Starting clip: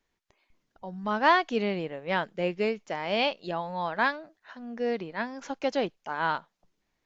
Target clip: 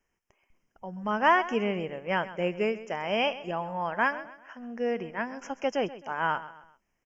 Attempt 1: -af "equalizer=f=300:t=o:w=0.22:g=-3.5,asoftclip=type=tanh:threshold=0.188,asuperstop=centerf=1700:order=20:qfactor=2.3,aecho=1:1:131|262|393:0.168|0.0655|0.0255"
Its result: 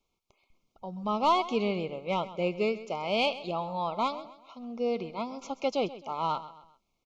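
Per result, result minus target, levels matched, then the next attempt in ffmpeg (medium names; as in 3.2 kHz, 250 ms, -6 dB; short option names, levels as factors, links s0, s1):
saturation: distortion +16 dB; 2 kHz band -7.5 dB
-af "equalizer=f=300:t=o:w=0.22:g=-3.5,asoftclip=type=tanh:threshold=0.631,asuperstop=centerf=1700:order=20:qfactor=2.3,aecho=1:1:131|262|393:0.168|0.0655|0.0255"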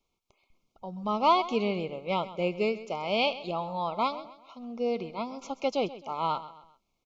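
2 kHz band -7.5 dB
-af "equalizer=f=300:t=o:w=0.22:g=-3.5,asoftclip=type=tanh:threshold=0.631,asuperstop=centerf=4000:order=20:qfactor=2.3,aecho=1:1:131|262|393:0.168|0.0655|0.0255"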